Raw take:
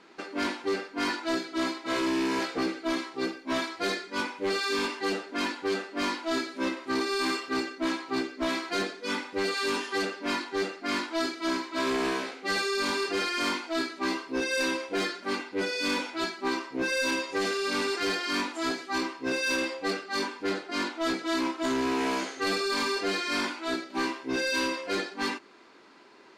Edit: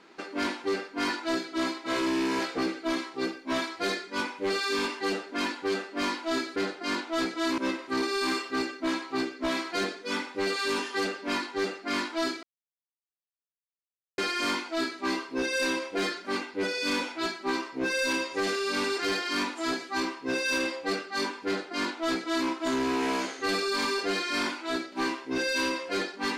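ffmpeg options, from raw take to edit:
-filter_complex "[0:a]asplit=5[s0][s1][s2][s3][s4];[s0]atrim=end=6.562[s5];[s1]atrim=start=20.438:end=21.462[s6];[s2]atrim=start=6.558:end=11.41,asetpts=PTS-STARTPTS,afade=t=out:st=4.848:d=0.004:c=hsin[s7];[s3]atrim=start=11.41:end=13.16,asetpts=PTS-STARTPTS,volume=0[s8];[s4]atrim=start=13.16,asetpts=PTS-STARTPTS,afade=t=in:d=0.004:c=hsin[s9];[s5][s6]acrossfade=d=0.004:c1=hsin:c2=hsin[s10];[s7][s8][s9]concat=n=3:v=0:a=1[s11];[s10][s11]acrossfade=d=0.004:c1=hsin:c2=hsin"

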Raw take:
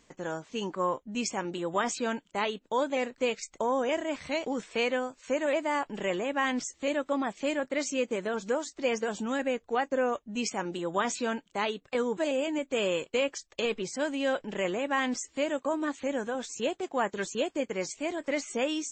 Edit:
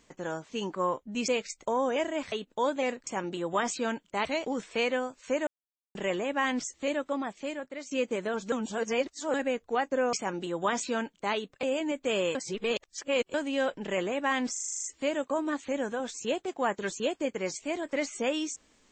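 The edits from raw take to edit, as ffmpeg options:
-filter_complex "[0:a]asplit=22[s0][s1][s2][s3][s4][s5][s6][s7][s8][s9][s10][s11][s12][s13][s14][s15][s16][s17][s18][s19][s20][s21];[s0]atrim=end=1.282[s22];[s1]atrim=start=3.208:end=4.252[s23];[s2]atrim=start=2.458:end=3.212[s24];[s3]atrim=start=1.278:end=2.462[s25];[s4]atrim=start=4.248:end=5.47,asetpts=PTS-STARTPTS,afade=t=out:st=1.218:d=0.004:c=hsin[s26];[s5]atrim=start=5.47:end=5.95,asetpts=PTS-STARTPTS,volume=0[s27];[s6]atrim=start=5.95:end=7.91,asetpts=PTS-STARTPTS,afade=t=in:d=0.004:c=hsin,afade=t=out:st=0.85:d=1.11:silence=0.237137[s28];[s7]atrim=start=7.91:end=8.522,asetpts=PTS-STARTPTS,afade=t=in:d=0.004:c=hsin:silence=0.237137[s29];[s8]atrim=start=8.518:end=9.342,asetpts=PTS-STARTPTS,areverse[s30];[s9]atrim=start=9.338:end=10.132[s31];[s10]atrim=start=10.448:end=11.952[s32];[s11]atrim=start=12.298:end=13.022[s33];[s12]atrim=start=13.018:end=14.012,asetpts=PTS-STARTPTS,areverse[s34];[s13]atrim=start=14.008:end=15.232[s35];[s14]atrim=start=15.188:end=15.232[s36];[s15]atrim=start=15.188:end=15.232[s37];[s16]atrim=start=15.188:end=15.232[s38];[s17]atrim=start=15.188:end=15.232[s39];[s18]atrim=start=15.188:end=15.232[s40];[s19]atrim=start=15.188:end=15.232[s41];[s20]atrim=start=15.188:end=15.232[s42];[s21]atrim=start=15.188[s43];[s22][s23]acrossfade=d=0.004:c1=hsin:c2=hsin[s44];[s44][s24]acrossfade=d=0.004:c1=hsin:c2=hsin[s45];[s45][s25]acrossfade=d=0.004:c1=hsin:c2=hsin[s46];[s26][s27][s28][s29]concat=n=4:v=0:a=1[s47];[s46][s47]acrossfade=d=0.004:c1=hsin:c2=hsin[s48];[s48][s30]acrossfade=d=0.004:c1=hsin:c2=hsin[s49];[s49][s31]acrossfade=d=0.004:c1=hsin:c2=hsin[s50];[s50][s32]acrossfade=d=0.004:c1=hsin:c2=hsin[s51];[s51][s33]acrossfade=d=0.004:c1=hsin:c2=hsin[s52];[s52][s34]acrossfade=d=0.004:c1=hsin:c2=hsin[s53];[s53][s35]acrossfade=d=0.004:c1=hsin:c2=hsin[s54];[s54][s36]acrossfade=d=0.004:c1=hsin:c2=hsin[s55];[s55][s37]acrossfade=d=0.004:c1=hsin:c2=hsin[s56];[s56][s38]acrossfade=d=0.004:c1=hsin:c2=hsin[s57];[s57][s39]acrossfade=d=0.004:c1=hsin:c2=hsin[s58];[s58][s40]acrossfade=d=0.004:c1=hsin:c2=hsin[s59];[s59][s41]acrossfade=d=0.004:c1=hsin:c2=hsin[s60];[s60][s42]acrossfade=d=0.004:c1=hsin:c2=hsin[s61];[s61][s43]acrossfade=d=0.004:c1=hsin:c2=hsin"

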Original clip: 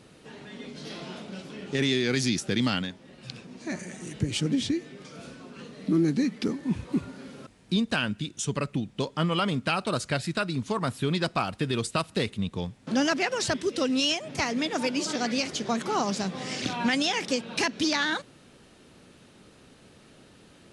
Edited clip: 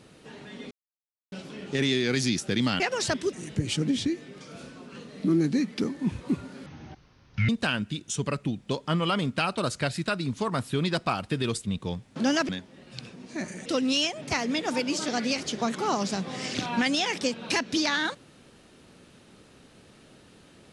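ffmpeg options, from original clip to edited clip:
-filter_complex "[0:a]asplit=10[s0][s1][s2][s3][s4][s5][s6][s7][s8][s9];[s0]atrim=end=0.71,asetpts=PTS-STARTPTS,afade=t=out:st=0.706:d=0.004:c=hsin[s10];[s1]atrim=start=0.71:end=1.32,asetpts=PTS-STARTPTS,volume=0[s11];[s2]atrim=start=1.32:end=2.802,asetpts=PTS-STARTPTS,afade=t=in:d=0.004:c=hsin[s12];[s3]atrim=start=13.198:end=13.732[s13];[s4]atrim=start=3.968:end=7.304[s14];[s5]atrim=start=7.3:end=7.78,asetpts=PTS-STARTPTS,asetrate=25578,aresample=44100[s15];[s6]atrim=start=7.776:end=11.932[s16];[s7]atrim=start=12.348:end=13.202[s17];[s8]atrim=start=2.798:end=3.972[s18];[s9]atrim=start=13.728[s19];[s10][s11][s12]concat=n=3:v=0:a=1[s20];[s20][s13]acrossfade=d=0.004:c1=hsin:c2=hsin[s21];[s21][s14]acrossfade=d=0.004:c1=hsin:c2=hsin[s22];[s22][s15]acrossfade=d=0.004:c1=hsin:c2=hsin[s23];[s23][s16]acrossfade=d=0.004:c1=hsin:c2=hsin[s24];[s24][s17]acrossfade=d=0.004:c1=hsin:c2=hsin[s25];[s25][s18]acrossfade=d=0.004:c1=hsin:c2=hsin[s26];[s26][s19]acrossfade=d=0.004:c1=hsin:c2=hsin"

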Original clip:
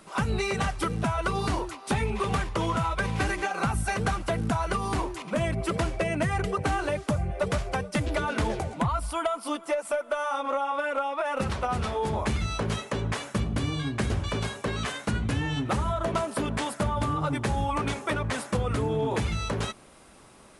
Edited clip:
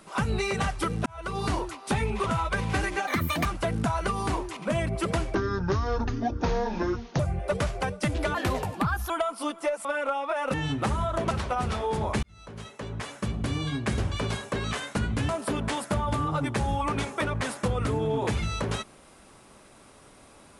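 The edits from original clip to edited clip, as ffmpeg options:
-filter_complex "[0:a]asplit=14[s0][s1][s2][s3][s4][s5][s6][s7][s8][s9][s10][s11][s12][s13];[s0]atrim=end=1.06,asetpts=PTS-STARTPTS,afade=t=out:st=1.056:d=0.004:c=hsin[s14];[s1]atrim=start=1.06:end=2.262,asetpts=PTS-STARTPTS,afade=t=in:d=0.42[s15];[s2]atrim=start=2.718:end=3.534[s16];[s3]atrim=start=3.53:end=4.11,asetpts=PTS-STARTPTS,asetrate=66591,aresample=44100,atrim=end_sample=16939,asetpts=PTS-STARTPTS[s17];[s4]atrim=start=4.106:end=6.004[s18];[s5]atrim=start=6:end=7.11,asetpts=PTS-STARTPTS,asetrate=26460,aresample=44100[s19];[s6]atrim=start=7.106:end=8.264[s20];[s7]atrim=start=8.26:end=9.15,asetpts=PTS-STARTPTS,asetrate=52038,aresample=44100[s21];[s8]atrim=start=9.146:end=9.902[s22];[s9]atrim=start=10.738:end=11.432[s23];[s10]atrim=start=15.408:end=16.182[s24];[s11]atrim=start=11.428:end=12.35,asetpts=PTS-STARTPTS,afade=t=out:st=0.918:d=0.004:c=hsin[s25];[s12]atrim=start=12.35:end=15.412,asetpts=PTS-STARTPTS,afade=t=in:d=1.41[s26];[s13]atrim=start=16.178[s27];[s14][s15]concat=n=2:v=0:a=1[s28];[s28][s16]acrossfade=d=0.004:c1=hsin:c2=hsin[s29];[s29][s17]acrossfade=d=0.004:c1=hsin:c2=hsin[s30];[s30][s18]acrossfade=d=0.004:c1=hsin:c2=hsin[s31];[s31][s19]acrossfade=d=0.004:c1=hsin:c2=hsin[s32];[s32][s20]acrossfade=d=0.004:c1=hsin:c2=hsin[s33];[s33][s21]acrossfade=d=0.004:c1=hsin:c2=hsin[s34];[s34][s22]acrossfade=d=0.004:c1=hsin:c2=hsin[s35];[s35][s23]acrossfade=d=0.004:c1=hsin:c2=hsin[s36];[s36][s24]acrossfade=d=0.004:c1=hsin:c2=hsin[s37];[s25][s26]concat=n=2:v=0:a=1[s38];[s37][s38]acrossfade=d=0.004:c1=hsin:c2=hsin[s39];[s39][s27]acrossfade=d=0.004:c1=hsin:c2=hsin"

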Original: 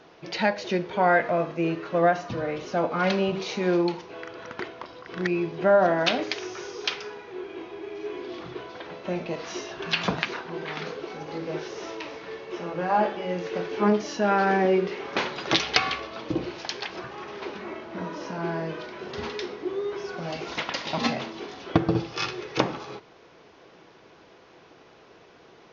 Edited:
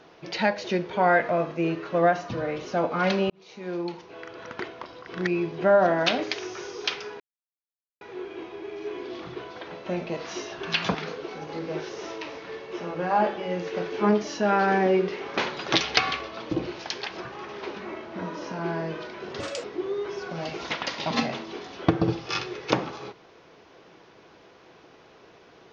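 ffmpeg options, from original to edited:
-filter_complex "[0:a]asplit=6[s0][s1][s2][s3][s4][s5];[s0]atrim=end=3.3,asetpts=PTS-STARTPTS,afade=t=out:st=3.296:d=0.004:c=hsin[s6];[s1]atrim=start=3.3:end=7.2,asetpts=PTS-STARTPTS,afade=t=in:d=1.21,afade=t=out:st=3.896:d=0.004:c=hsin,apad=pad_dur=0.81[s7];[s2]atrim=start=7.2:end=10.142,asetpts=PTS-STARTPTS,afade=t=in:d=0.004:c=hsin[s8];[s3]atrim=start=10.738:end=19.194[s9];[s4]atrim=start=19.19:end=19.51,asetpts=PTS-STARTPTS,asetrate=59094,aresample=44100,atrim=end_sample=10531,asetpts=PTS-STARTPTS[s10];[s5]atrim=start=19.506[s11];[s6][s7][s8]concat=n=3:v=0:a=1[s12];[s12][s9]acrossfade=d=0.004:c1=hsin:c2=hsin[s13];[s13][s10]acrossfade=d=0.004:c1=hsin:c2=hsin[s14];[s14][s11]acrossfade=d=0.004:c1=hsin:c2=hsin"

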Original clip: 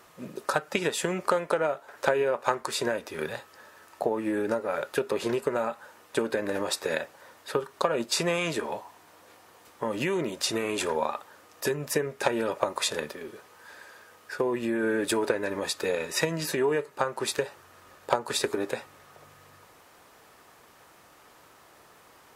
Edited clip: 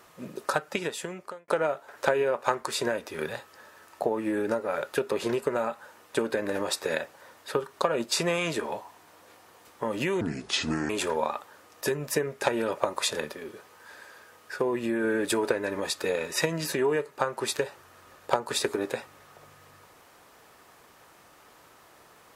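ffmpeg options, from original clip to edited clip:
-filter_complex "[0:a]asplit=4[s0][s1][s2][s3];[s0]atrim=end=1.48,asetpts=PTS-STARTPTS,afade=t=out:st=0.5:d=0.98[s4];[s1]atrim=start=1.48:end=10.214,asetpts=PTS-STARTPTS,afade=t=in:d=0.004:c=hsin[s5];[s2]atrim=start=10.21:end=10.69,asetpts=PTS-STARTPTS,asetrate=30870,aresample=44100,atrim=end_sample=30240,asetpts=PTS-STARTPTS[s6];[s3]atrim=start=10.686[s7];[s4][s5]concat=n=2:v=0:a=1[s8];[s8][s6]acrossfade=d=0.004:c1=hsin:c2=hsin[s9];[s9][s7]acrossfade=d=0.004:c1=hsin:c2=hsin"

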